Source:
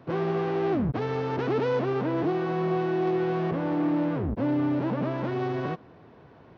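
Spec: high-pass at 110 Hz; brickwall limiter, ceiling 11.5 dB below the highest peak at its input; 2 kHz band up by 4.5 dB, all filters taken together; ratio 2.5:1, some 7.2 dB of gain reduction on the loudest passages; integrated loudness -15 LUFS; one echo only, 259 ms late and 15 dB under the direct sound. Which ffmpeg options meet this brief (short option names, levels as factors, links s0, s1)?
-af "highpass=110,equalizer=f=2000:t=o:g=6,acompressor=threshold=0.0224:ratio=2.5,alimiter=level_in=2.99:limit=0.0631:level=0:latency=1,volume=0.335,aecho=1:1:259:0.178,volume=21.1"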